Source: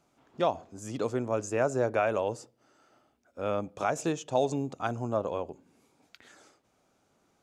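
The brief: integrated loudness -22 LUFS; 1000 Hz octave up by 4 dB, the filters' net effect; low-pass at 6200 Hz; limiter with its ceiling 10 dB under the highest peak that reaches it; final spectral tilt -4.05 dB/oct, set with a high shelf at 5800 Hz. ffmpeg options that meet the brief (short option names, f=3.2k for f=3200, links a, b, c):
-af "lowpass=6.2k,equalizer=f=1k:t=o:g=6,highshelf=f=5.8k:g=-7,volume=12dB,alimiter=limit=-9dB:level=0:latency=1"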